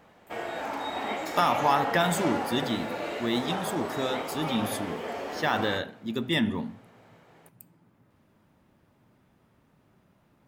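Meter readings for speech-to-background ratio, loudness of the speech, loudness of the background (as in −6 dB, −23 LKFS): 4.5 dB, −29.0 LKFS, −33.5 LKFS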